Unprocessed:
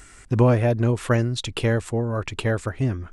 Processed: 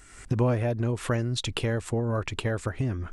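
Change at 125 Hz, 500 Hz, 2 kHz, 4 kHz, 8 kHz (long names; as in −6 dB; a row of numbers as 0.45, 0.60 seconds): −5.5, −6.0, −5.0, −1.5, −2.0 decibels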